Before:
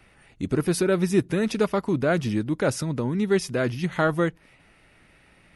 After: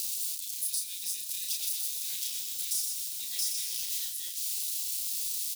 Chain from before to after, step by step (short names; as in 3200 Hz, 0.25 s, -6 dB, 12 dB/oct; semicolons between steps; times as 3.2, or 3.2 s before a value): switching spikes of -23.5 dBFS; inverse Chebyshev high-pass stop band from 1400 Hz, stop band 50 dB; compressor 16:1, threshold -32 dBFS, peak gain reduction 10.5 dB; doubler 33 ms -3 dB; feedback echo 0.55 s, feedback 53%, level -20 dB; reverb RT60 5.3 s, pre-delay 71 ms, DRR 9 dB; 1.4–4.05 lo-fi delay 0.124 s, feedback 55%, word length 10-bit, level -4.5 dB; gain +2.5 dB